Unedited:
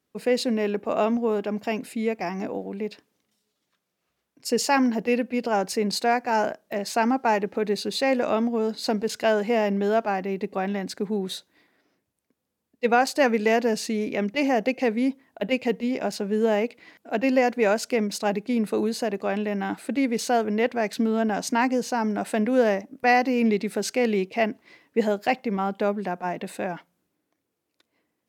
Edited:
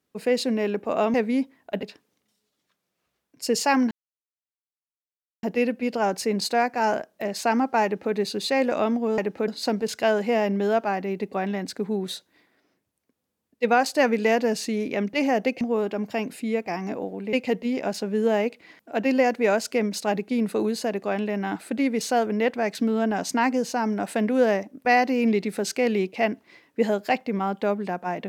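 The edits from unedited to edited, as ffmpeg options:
-filter_complex "[0:a]asplit=8[a][b][c][d][e][f][g][h];[a]atrim=end=1.142[i];[b]atrim=start=14.818:end=15.512[j];[c]atrim=start=2.858:end=4.94,asetpts=PTS-STARTPTS,afade=t=out:st=2.078:d=0.004:c=hsin,apad=pad_dur=1.52[k];[d]atrim=start=4.94:end=8.692,asetpts=PTS-STARTPTS,afade=t=in:d=0.004:c=hsin[l];[e]atrim=start=7.348:end=7.652[m];[f]atrim=start=8.688:end=14.822[n];[g]atrim=start=1.138:end=2.862[o];[h]atrim=start=15.508[p];[i][j]acrossfade=d=0.004:c1=hsin:c2=hsin[q];[k][l]concat=n=2:v=0:a=1[r];[q][r]acrossfade=d=0.004:c1=hsin:c2=hsin[s];[s][m]acrossfade=d=0.004:c1=hsin:c2=hsin[t];[t][n]acrossfade=d=0.004:c1=hsin:c2=hsin[u];[u][o]acrossfade=d=0.004:c1=hsin:c2=hsin[v];[v][p]acrossfade=d=0.004:c1=hsin:c2=hsin"

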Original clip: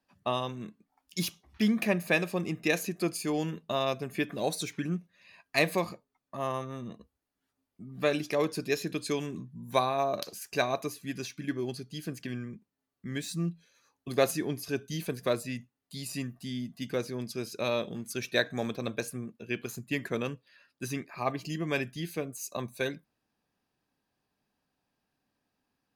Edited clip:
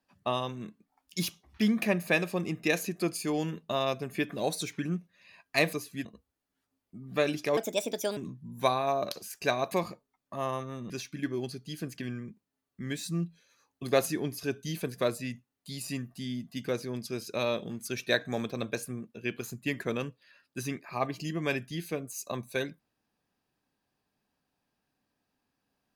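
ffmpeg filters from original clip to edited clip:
-filter_complex "[0:a]asplit=7[a][b][c][d][e][f][g];[a]atrim=end=5.732[h];[b]atrim=start=10.828:end=11.152[i];[c]atrim=start=6.908:end=8.434[j];[d]atrim=start=8.43:end=9.28,asetpts=PTS-STARTPTS,asetrate=62622,aresample=44100[k];[e]atrim=start=9.276:end=10.832[l];[f]atrim=start=5.728:end=6.912[m];[g]atrim=start=11.148[n];[h][i]acrossfade=d=0.004:c1=hsin:c2=hsin[o];[o][j]acrossfade=d=0.004:c1=hsin:c2=hsin[p];[p][k]acrossfade=d=0.004:c1=hsin:c2=hsin[q];[q][l]acrossfade=d=0.004:c1=hsin:c2=hsin[r];[r][m]acrossfade=d=0.004:c1=hsin:c2=hsin[s];[s][n]acrossfade=d=0.004:c1=hsin:c2=hsin"

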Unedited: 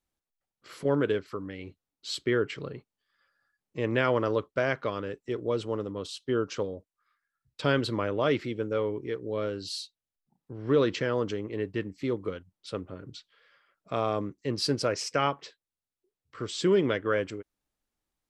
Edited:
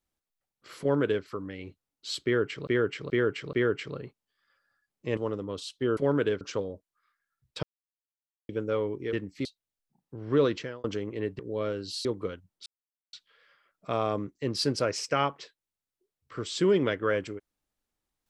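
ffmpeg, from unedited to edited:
-filter_complex "[0:a]asplit=16[a][b][c][d][e][f][g][h][i][j][k][l][m][n][o][p];[a]atrim=end=2.672[q];[b]atrim=start=2.238:end=2.672[r];[c]atrim=start=2.238:end=2.672[s];[d]atrim=start=2.238:end=3.882[t];[e]atrim=start=5.638:end=6.442[u];[f]atrim=start=0.798:end=1.242[v];[g]atrim=start=6.438:end=7.66,asetpts=PTS-STARTPTS,afade=t=out:st=1.218:d=0.004:c=hsin[w];[h]atrim=start=7.66:end=8.52,asetpts=PTS-STARTPTS,volume=0[x];[i]atrim=start=8.52:end=9.162,asetpts=PTS-STARTPTS,afade=t=in:d=0.004:c=hsin[y];[j]atrim=start=11.758:end=12.082[z];[k]atrim=start=9.818:end=11.21,asetpts=PTS-STARTPTS,afade=t=out:st=0.982:d=0.41[aa];[l]atrim=start=11.21:end=11.762,asetpts=PTS-STARTPTS,afade=t=in:d=0.004:c=hsin[ab];[m]atrim=start=9.158:end=9.822[ac];[n]atrim=start=12.078:end=12.69,asetpts=PTS-STARTPTS,afade=t=out:st=0.608:d=0.004:c=hsin[ad];[o]atrim=start=12.69:end=13.16,asetpts=PTS-STARTPTS,volume=0[ae];[p]atrim=start=13.16,asetpts=PTS-STARTPTS,afade=t=in:d=0.004:c=hsin[af];[q][r]acrossfade=d=0.004:c1=hsin:c2=hsin[ag];[ag][s]acrossfade=d=0.004:c1=hsin:c2=hsin[ah];[ah][t]acrossfade=d=0.004:c1=hsin:c2=hsin[ai];[ai][u]acrossfade=d=0.004:c1=hsin:c2=hsin[aj];[aj][v]acrossfade=d=0.004:c1=hsin:c2=hsin[ak];[w][x][y]concat=n=3:v=0:a=1[al];[ak][al]acrossfade=d=0.004:c1=hsin:c2=hsin[am];[am][z]acrossfade=d=0.004:c1=hsin:c2=hsin[an];[aa][ab]concat=n=2:v=0:a=1[ao];[an][ao]acrossfade=d=0.004:c1=hsin:c2=hsin[ap];[ap][ac]acrossfade=d=0.004:c1=hsin:c2=hsin[aq];[ad][ae][af]concat=n=3:v=0:a=1[ar];[aq][ar]acrossfade=d=0.004:c1=hsin:c2=hsin"

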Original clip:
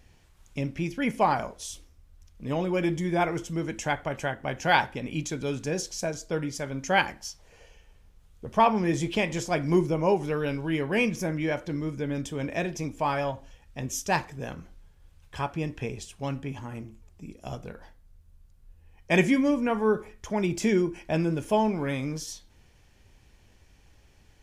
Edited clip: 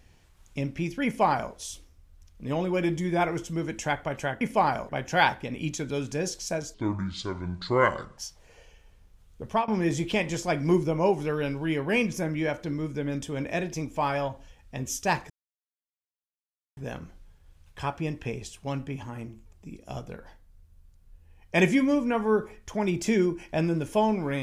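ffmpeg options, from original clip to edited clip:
-filter_complex "[0:a]asplit=7[a][b][c][d][e][f][g];[a]atrim=end=4.412[h];[b]atrim=start=1.048:end=1.532[i];[c]atrim=start=4.408:end=6.264[j];[d]atrim=start=6.26:end=7.21,asetpts=PTS-STARTPTS,asetrate=29106,aresample=44100,atrim=end_sample=63477,asetpts=PTS-STARTPTS[k];[e]atrim=start=7.206:end=8.71,asetpts=PTS-STARTPTS,afade=t=out:st=1.244:d=0.26:c=qsin:silence=0.0794328[l];[f]atrim=start=8.71:end=14.33,asetpts=PTS-STARTPTS,afade=t=in:d=0.004:c=hsin:silence=0.0794328,afade=t=out:st=5.616:d=0.004:c=hsin,apad=pad_dur=1.47[m];[g]atrim=start=14.33,asetpts=PTS-STARTPTS,afade=t=in:d=0.004:c=hsin[n];[h][i]acrossfade=d=0.004:c1=hsin:c2=hsin[o];[o][j]acrossfade=d=0.004:c1=hsin:c2=hsin[p];[p][k]acrossfade=d=0.004:c1=hsin:c2=hsin[q];[l][m][n]concat=n=3:v=0:a=1[r];[q][r]acrossfade=d=0.004:c1=hsin:c2=hsin"

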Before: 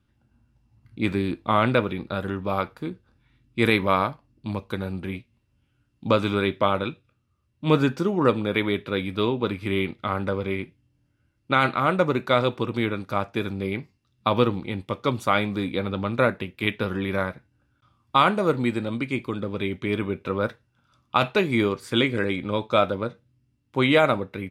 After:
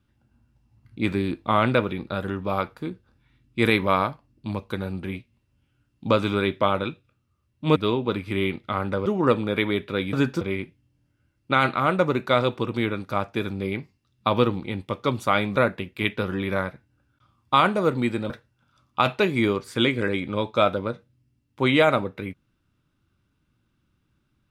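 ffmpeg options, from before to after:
-filter_complex "[0:a]asplit=7[a][b][c][d][e][f][g];[a]atrim=end=7.762[h];[b]atrim=start=9.108:end=10.412[i];[c]atrim=start=8.038:end=9.112[j];[d]atrim=start=7.758:end=8.042[k];[e]atrim=start=10.408:end=15.562[l];[f]atrim=start=16.178:end=18.922[m];[g]atrim=start=20.458[n];[h][i]acrossfade=d=0.004:c1=hsin:c2=hsin[o];[o][j]acrossfade=d=0.004:c1=hsin:c2=hsin[p];[p][k]acrossfade=d=0.004:c1=hsin:c2=hsin[q];[q][l]acrossfade=d=0.004:c1=hsin:c2=hsin[r];[r][m]acrossfade=d=0.004:c1=hsin:c2=hsin[s];[s][n]acrossfade=d=0.004:c1=hsin:c2=hsin"

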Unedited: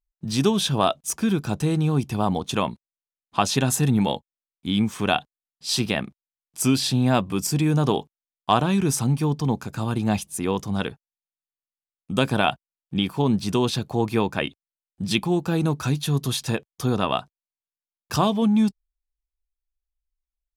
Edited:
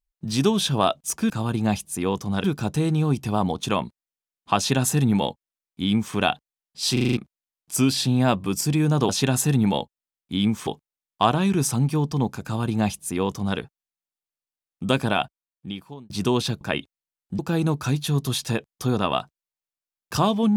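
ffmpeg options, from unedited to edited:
-filter_complex "[0:a]asplit=14[a][b][c][d][e][f][g][h][i][j][k][l][m][n];[a]atrim=end=1.302[o];[b]atrim=start=9.718:end=10.862[p];[c]atrim=start=1.298:end=5.832[q];[d]atrim=start=5.788:end=5.832[r];[e]atrim=start=5.788:end=5.832[s];[f]atrim=start=5.788:end=5.832[t];[g]atrim=start=5.788:end=5.832[u];[h]atrim=start=5.788:end=5.832[v];[i]atrim=start=6.028:end=7.952[w];[j]atrim=start=3.428:end=5.012[x];[k]atrim=start=7.948:end=13.38,asetpts=PTS-STARTPTS,afade=t=out:st=4.262:d=1.17[y];[l]atrim=start=13.38:end=13.892,asetpts=PTS-STARTPTS,afade=t=in:d=0.004:c=hsin[z];[m]atrim=start=14.288:end=15.072[aa];[n]atrim=start=15.378[ab];[o][p]acrossfade=d=0.004:c1=hsin:c2=hsin[ac];[ac][q]acrossfade=d=0.004:c1=hsin:c2=hsin[ad];[ad][r]acrossfade=d=0.004:c1=hsin:c2=hsin[ae];[ae][s]acrossfade=d=0.004:c1=hsin:c2=hsin[af];[af][t]acrossfade=d=0.004:c1=hsin:c2=hsin[ag];[ag][u]acrossfade=d=0.004:c1=hsin:c2=hsin[ah];[ah][v]acrossfade=d=0.004:c1=hsin:c2=hsin[ai];[ai][w]acrossfade=d=0.004:c1=hsin:c2=hsin[aj];[aj][x]acrossfade=d=0.004:c1=hsin:c2=hsin[ak];[y][z]concat=n=2:v=0:a=1[al];[ak][al]acrossfade=d=0.004:c1=hsin:c2=hsin[am];[am][aa]acrossfade=d=0.004:c1=hsin:c2=hsin[an];[an][ab]acrossfade=d=0.004:c1=hsin:c2=hsin"

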